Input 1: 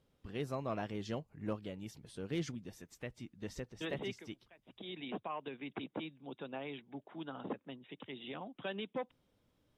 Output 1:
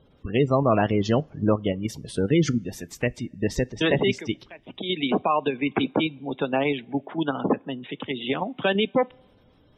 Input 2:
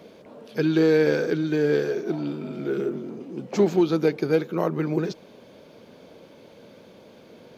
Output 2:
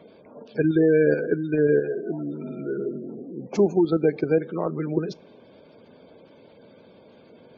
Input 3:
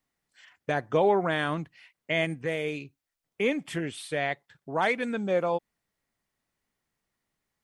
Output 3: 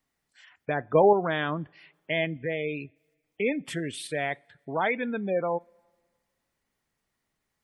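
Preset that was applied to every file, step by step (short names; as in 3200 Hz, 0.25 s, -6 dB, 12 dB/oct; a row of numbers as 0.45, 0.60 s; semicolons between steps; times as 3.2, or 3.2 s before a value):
spectral gate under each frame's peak -25 dB strong; in parallel at -0.5 dB: level quantiser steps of 22 dB; on the sum: two-slope reverb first 0.22 s, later 1.8 s, from -22 dB, DRR 19.5 dB; normalise peaks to -9 dBFS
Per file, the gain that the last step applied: +15.0, -3.0, -1.5 dB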